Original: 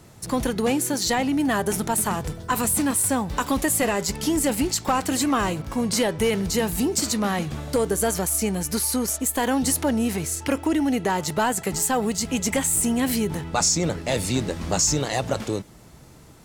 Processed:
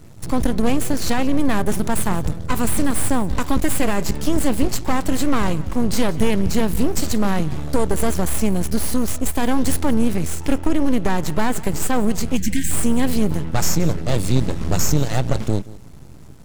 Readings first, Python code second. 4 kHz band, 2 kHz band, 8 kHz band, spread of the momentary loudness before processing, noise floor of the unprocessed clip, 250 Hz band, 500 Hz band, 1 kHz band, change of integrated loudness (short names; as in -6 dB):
-2.0 dB, 0.0 dB, -3.5 dB, 5 LU, -48 dBFS, +3.5 dB, +1.0 dB, 0.0 dB, +1.5 dB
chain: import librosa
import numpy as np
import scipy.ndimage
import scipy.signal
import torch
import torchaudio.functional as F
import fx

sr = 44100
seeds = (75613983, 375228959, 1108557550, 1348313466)

y = np.maximum(x, 0.0)
y = fx.low_shelf(y, sr, hz=280.0, db=11.5)
y = fx.spec_box(y, sr, start_s=12.37, length_s=0.34, low_hz=360.0, high_hz=1500.0, gain_db=-29)
y = y + 10.0 ** (-19.5 / 20.0) * np.pad(y, (int(177 * sr / 1000.0), 0))[:len(y)]
y = y * librosa.db_to_amplitude(2.0)